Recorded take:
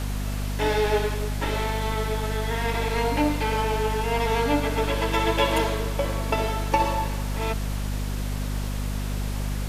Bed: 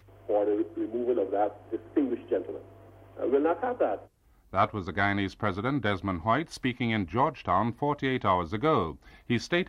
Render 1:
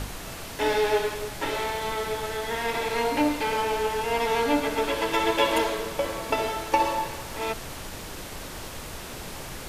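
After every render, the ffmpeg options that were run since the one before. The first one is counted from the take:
ffmpeg -i in.wav -af "bandreject=frequency=50:width_type=h:width=6,bandreject=frequency=100:width_type=h:width=6,bandreject=frequency=150:width_type=h:width=6,bandreject=frequency=200:width_type=h:width=6,bandreject=frequency=250:width_type=h:width=6" out.wav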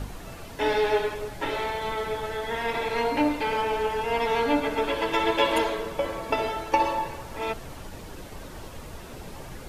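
ffmpeg -i in.wav -af "afftdn=noise_reduction=9:noise_floor=-38" out.wav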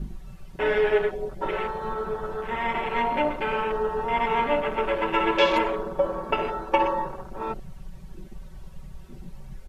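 ffmpeg -i in.wav -af "afwtdn=0.0282,aecho=1:1:5.3:0.87" out.wav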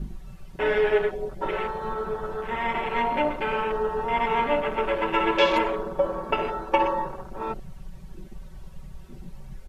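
ffmpeg -i in.wav -af anull out.wav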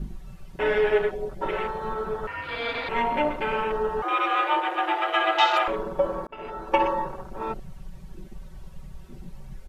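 ffmpeg -i in.wav -filter_complex "[0:a]asettb=1/sr,asplit=3[link_01][link_02][link_03];[link_01]atrim=end=2.274[link_04];[link_02]atrim=start=2.27:end=2.89,asetpts=PTS-STARTPTS,afade=type=in:duration=0.004:curve=qsin,afade=type=out:start_time=0.616:duration=0.004:curve=qsin,aeval=exprs='val(0)*sin(2*PI*1400*n/s)':channel_layout=same[link_05];[link_03]atrim=start=2.886[link_06];[link_04][link_05]acrossfade=duration=0.004:curve1=hsin:curve2=qsin[link_07];[link_07][link_06]acrossfade=duration=0.004:curve1=qsin:curve2=hsin,asettb=1/sr,asplit=3[link_08][link_09][link_10];[link_08]atrim=end=4.024[link_11];[link_09]atrim=start=4.02:end=5.68,asetpts=PTS-STARTPTS,afade=type=in:duration=0.004:curve=qsin,afade=type=out:start_time=1.656:duration=0.004:curve=qsin,afreqshift=320[link_12];[link_10]atrim=start=5.676[link_13];[link_11][link_12]acrossfade=duration=0.004:curve1=hsin:curve2=qsin[link_14];[link_14][link_13]acrossfade=duration=0.004:curve1=qsin:curve2=hsin,asplit=2[link_15][link_16];[link_15]atrim=end=6.27,asetpts=PTS-STARTPTS,afade=type=out:start_time=6.266:duration=0.004:curve=hsin[link_17];[link_16]atrim=start=6.27,asetpts=PTS-STARTPTS,afade=type=in:duration=0.48[link_18];[link_17][link_18]concat=n=2:v=0:a=1" out.wav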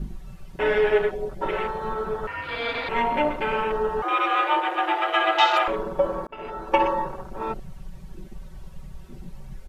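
ffmpeg -i in.wav -af "volume=1.5dB" out.wav

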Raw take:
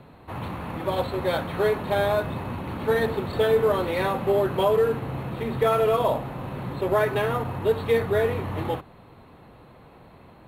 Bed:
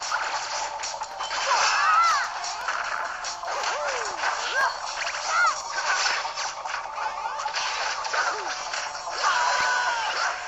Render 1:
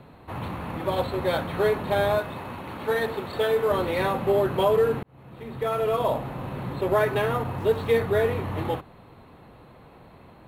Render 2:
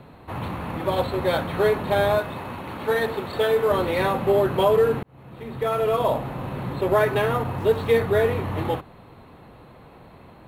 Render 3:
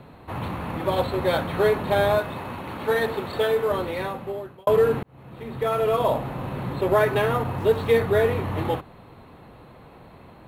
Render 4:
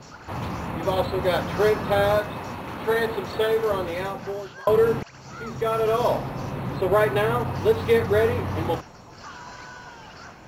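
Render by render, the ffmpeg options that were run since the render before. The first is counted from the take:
ffmpeg -i in.wav -filter_complex "[0:a]asettb=1/sr,asplit=3[link_01][link_02][link_03];[link_01]atrim=end=2.184[link_04];[link_02]atrim=start=2.18:end=3.71,asetpts=PTS-STARTPTS,afade=type=in:duration=0.004:curve=qsin,afade=type=out:start_time=1.526:duration=0.004:curve=qsin,lowshelf=frequency=290:gain=-9.5[link_05];[link_03]atrim=start=3.706[link_06];[link_04][link_05]acrossfade=duration=0.004:curve1=hsin:curve2=qsin[link_07];[link_07][link_06]acrossfade=duration=0.004:curve1=qsin:curve2=hsin,asettb=1/sr,asplit=3[link_08][link_09][link_10];[link_08]atrim=end=7.584[link_11];[link_09]atrim=start=7.58:end=8,asetpts=PTS-STARTPTS,afade=type=in:duration=0.004:curve=qsin,afade=type=out:start_time=0.416:duration=0.004:curve=qsin,aeval=exprs='val(0)*gte(abs(val(0)),0.00473)':channel_layout=same[link_12];[link_10]atrim=start=7.996[link_13];[link_11][link_12]acrossfade=duration=0.004:curve1=hsin:curve2=qsin[link_14];[link_14][link_13]acrossfade=duration=0.004:curve1=qsin:curve2=hsin,asplit=2[link_15][link_16];[link_15]atrim=end=5.03,asetpts=PTS-STARTPTS,afade=type=out:start_time=5.026:duration=0.004:curve=hsin[link_17];[link_16]atrim=start=5.03,asetpts=PTS-STARTPTS,afade=type=in:duration=1.24[link_18];[link_17][link_18]concat=n=2:v=0:a=1" out.wav
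ffmpeg -i in.wav -af "volume=2.5dB" out.wav
ffmpeg -i in.wav -filter_complex "[0:a]asplit=2[link_01][link_02];[link_01]atrim=end=4.67,asetpts=PTS-STARTPTS,afade=type=out:start_time=3.29:duration=1.38[link_03];[link_02]atrim=start=4.67,asetpts=PTS-STARTPTS,afade=type=in:duration=0.004:curve=hsin[link_04];[link_03][link_04]concat=n=2:v=0:a=1" out.wav
ffmpeg -i in.wav -i bed.wav -filter_complex "[1:a]volume=-18.5dB[link_01];[0:a][link_01]amix=inputs=2:normalize=0" out.wav

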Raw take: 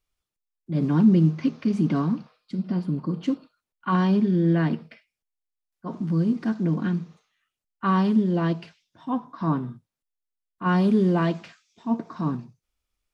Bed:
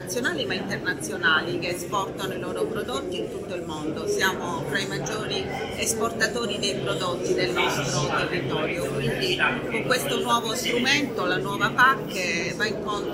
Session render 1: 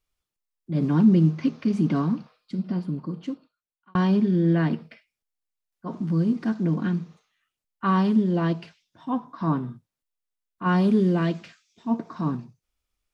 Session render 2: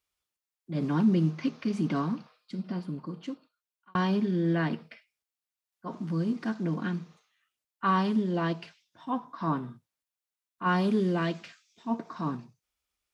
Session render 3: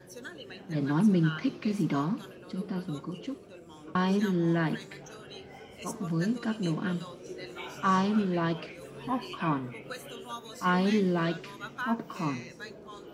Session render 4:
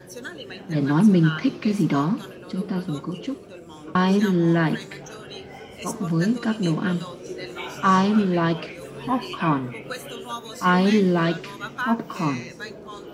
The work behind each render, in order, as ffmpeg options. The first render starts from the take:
ffmpeg -i in.wav -filter_complex "[0:a]asettb=1/sr,asplit=3[link_01][link_02][link_03];[link_01]atrim=end=11.004[link_04];[link_02]atrim=start=11:end=11.88,asetpts=PTS-STARTPTS,afade=type=in:duration=0.004:curve=qsin,afade=type=out:start_time=0.876:duration=0.004:curve=qsin,equalizer=frequency=890:width_type=o:width=1:gain=-6.5[link_05];[link_03]atrim=start=11.876[link_06];[link_04][link_05]acrossfade=duration=0.004:curve1=hsin:curve2=qsin[link_07];[link_07][link_06]acrossfade=duration=0.004:curve1=qsin:curve2=hsin,asplit=2[link_08][link_09];[link_08]atrim=end=3.95,asetpts=PTS-STARTPTS,afade=type=out:start_time=2.55:duration=1.4[link_10];[link_09]atrim=start=3.95,asetpts=PTS-STARTPTS,afade=type=in:duration=0.004:curve=hsin[link_11];[link_10][link_11]concat=n=2:v=0:a=1" out.wav
ffmpeg -i in.wav -af "highpass=43,lowshelf=frequency=400:gain=-8.5" out.wav
ffmpeg -i in.wav -i bed.wav -filter_complex "[1:a]volume=-18dB[link_01];[0:a][link_01]amix=inputs=2:normalize=0" out.wav
ffmpeg -i in.wav -af "volume=7.5dB" out.wav

